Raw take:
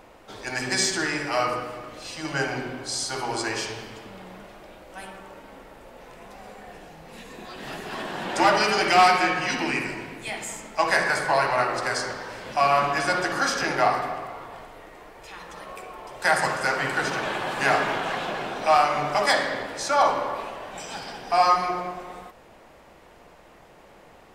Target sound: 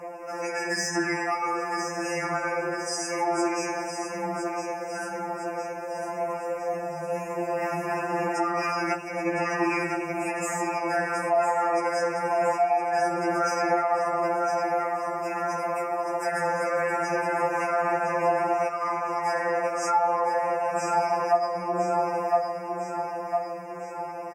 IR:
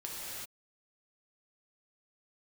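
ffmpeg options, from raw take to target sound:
-filter_complex "[0:a]asplit=2[s0][s1];[s1]asoftclip=type=hard:threshold=0.106,volume=0.708[s2];[s0][s2]amix=inputs=2:normalize=0,asuperstop=centerf=3700:order=20:qfactor=1.7,acompressor=threshold=0.0316:ratio=2.5,highpass=f=200:p=1,equalizer=f=660:w=0.83:g=12.5,aecho=1:1:1009|2018|3027|4036|5045|6054:0.376|0.203|0.11|0.0592|0.032|0.0173,alimiter=limit=0.158:level=0:latency=1:release=18,lowshelf=f=280:g=5.5,afftfilt=real='re*2.83*eq(mod(b,8),0)':imag='im*2.83*eq(mod(b,8),0)':win_size=2048:overlap=0.75"

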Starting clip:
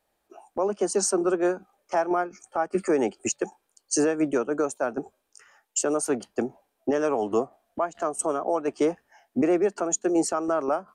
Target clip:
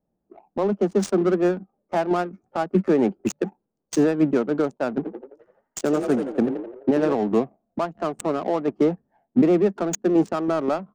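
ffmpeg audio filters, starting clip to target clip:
-filter_complex "[0:a]equalizer=f=180:t=o:w=1.2:g=13.5,asettb=1/sr,asplit=3[s0][s1][s2];[s0]atrim=end=4.954[s3];[s1]atrim=start=4.95:end=7.13,asetpts=PTS-STARTPTS,afade=t=in:d=0.004:c=qsin,afade=t=out:st=2.176:d=0.004:c=qsin,asplit=8[s4][s5][s6][s7][s8][s9][s10][s11];[s5]adelay=85,afreqshift=38,volume=0.447[s12];[s6]adelay=170,afreqshift=76,volume=0.251[s13];[s7]adelay=255,afreqshift=114,volume=0.14[s14];[s8]adelay=340,afreqshift=152,volume=0.0785[s15];[s9]adelay=425,afreqshift=190,volume=0.0442[s16];[s10]adelay=510,afreqshift=228,volume=0.0245[s17];[s11]adelay=595,afreqshift=266,volume=0.0138[s18];[s4][s12][s13][s14][s15][s16][s17][s18]amix=inputs=8:normalize=0,atrim=end_sample=96138[s19];[s2]atrim=start=7.126[s20];[s3][s19]acrossfade=d=0.004:c1=hsin:c2=qsin[s21];[s21][s20]acrossfade=d=0.004:c1=qsin:c2=hsin,adynamicsmooth=sensitivity=3.5:basefreq=550"

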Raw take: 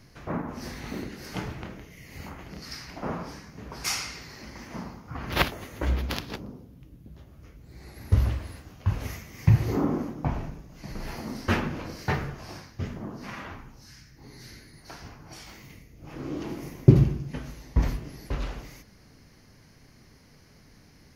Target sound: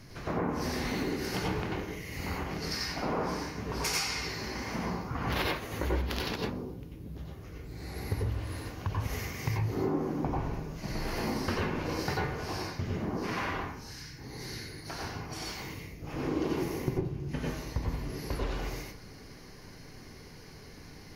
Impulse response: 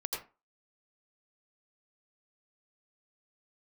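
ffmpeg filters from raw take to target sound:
-filter_complex "[0:a]acompressor=threshold=0.0224:ratio=12[s0];[1:a]atrim=start_sample=2205,asetrate=40131,aresample=44100[s1];[s0][s1]afir=irnorm=-1:irlink=0,volume=1.58"

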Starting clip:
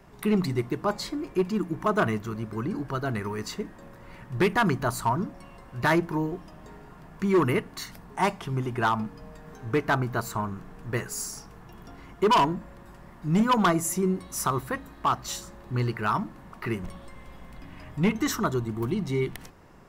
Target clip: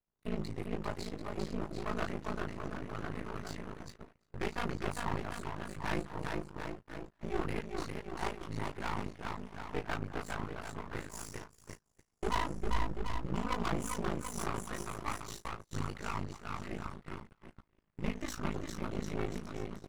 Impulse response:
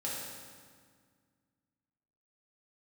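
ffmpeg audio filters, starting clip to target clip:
-filter_complex "[0:a]aecho=1:1:400|740|1029|1275|1483:0.631|0.398|0.251|0.158|0.1,flanger=delay=22.5:depth=2.2:speed=0.11,aeval=exprs='val(0)*sin(2*PI*27*n/s)':c=same,agate=range=0.0447:threshold=0.0126:ratio=16:detection=peak,lowpass=f=11000:w=0.5412,lowpass=f=11000:w=1.3066,aeval=exprs='max(val(0),0)':c=same,asettb=1/sr,asplit=3[s0][s1][s2];[s0]atrim=end=12.544[s3];[s1]atrim=start=12.54:end=13.26,asetpts=PTS-STARTPTS,afade=t=in:d=0.004:c=qsin,afade=t=out:st=0.716:d=0.004:c=qsin,lowshelf=f=150:g=11.5[s4];[s2]atrim=start=13.256[s5];[s3][s4]acrossfade=d=0.004:c1=hsin:c2=qsin[s6];[s6][s5]acrossfade=d=0.004:c1=qsin:c2=hsin,volume=0.668"

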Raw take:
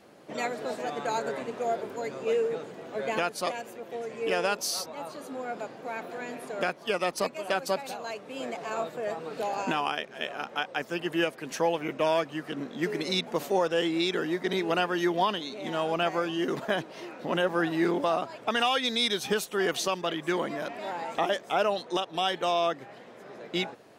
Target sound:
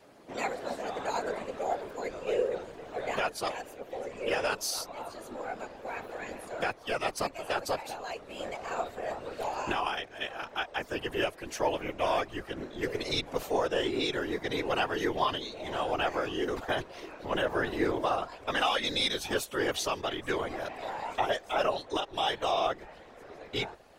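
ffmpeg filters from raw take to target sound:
-af "afreqshift=26,afftfilt=real='hypot(re,im)*cos(2*PI*random(0))':imag='hypot(re,im)*sin(2*PI*random(1))':win_size=512:overlap=0.75,asubboost=boost=6:cutoff=67,volume=1.58"

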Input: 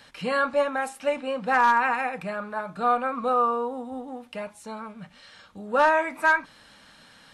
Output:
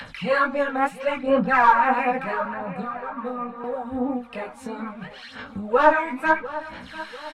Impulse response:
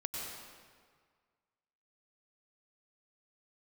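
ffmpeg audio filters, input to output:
-filter_complex "[0:a]aphaser=in_gain=1:out_gain=1:delay=4.2:decay=0.74:speed=0.74:type=sinusoidal,acrossover=split=910[s0][s1];[s0]agate=range=0.0224:threshold=0.00631:ratio=3:detection=peak[s2];[s1]alimiter=limit=0.282:level=0:latency=1:release=351[s3];[s2][s3]amix=inputs=2:normalize=0,flanger=delay=16:depth=5.6:speed=1.9,acompressor=mode=upward:threshold=0.0224:ratio=2.5,bass=f=250:g=4,treble=f=4000:g=-11,asettb=1/sr,asplit=3[s4][s5][s6];[s4]atrim=end=2.454[s7];[s5]atrim=start=2.45:end=3.64,asetpts=PTS-STARTPTS,afade=t=in:d=0.004:c=qsin,afade=t=out:st=1.186:d=0.004:c=qsin,acrossover=split=99|210|2100[s8][s9][s10][s11];[s8]acompressor=threshold=0.001:ratio=4[s12];[s9]acompressor=threshold=0.00708:ratio=4[s13];[s10]acompressor=threshold=0.0141:ratio=4[s14];[s11]acompressor=threshold=0.00126:ratio=4[s15];[s12][s13][s14][s15]amix=inputs=4:normalize=0[s16];[s6]atrim=start=3.636[s17];[s7][s16]acrossfade=d=0.004:c1=hsin:c2=qsin[s18];[s18][s17]acrossfade=d=0.004:c1=qsin:c2=hsin,asplit=2[s19][s20];[s20]adelay=697,lowpass=f=4600:p=1,volume=0.178,asplit=2[s21][s22];[s22]adelay=697,lowpass=f=4600:p=1,volume=0.47,asplit=2[s23][s24];[s24]adelay=697,lowpass=f=4600:p=1,volume=0.47,asplit=2[s25][s26];[s26]adelay=697,lowpass=f=4600:p=1,volume=0.47[s27];[s21][s23][s25][s27]amix=inputs=4:normalize=0[s28];[s19][s28]amix=inputs=2:normalize=0,volume=1.58"

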